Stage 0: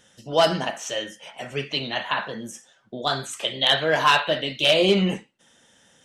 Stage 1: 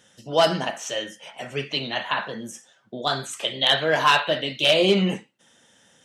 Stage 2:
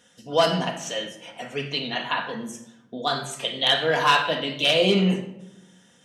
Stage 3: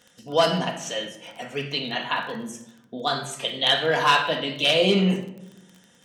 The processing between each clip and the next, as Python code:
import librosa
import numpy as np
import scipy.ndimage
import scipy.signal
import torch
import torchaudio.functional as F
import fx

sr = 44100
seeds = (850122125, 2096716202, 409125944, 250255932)

y1 = scipy.signal.sosfilt(scipy.signal.butter(2, 75.0, 'highpass', fs=sr, output='sos'), x)
y2 = fx.room_shoebox(y1, sr, seeds[0], volume_m3=3100.0, walls='furnished', distance_m=1.8)
y2 = y2 * 10.0 ** (-2.0 / 20.0)
y3 = fx.dmg_crackle(y2, sr, seeds[1], per_s=22.0, level_db=-35.0)